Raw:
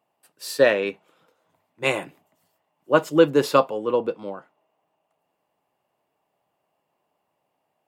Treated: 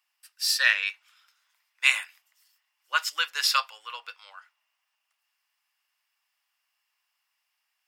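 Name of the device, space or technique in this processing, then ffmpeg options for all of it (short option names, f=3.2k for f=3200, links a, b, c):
headphones lying on a table: -af "highpass=f=1.5k:w=0.5412,highpass=f=1.5k:w=1.3066,equalizer=f=5.2k:t=o:w=0.31:g=10,volume=4.5dB"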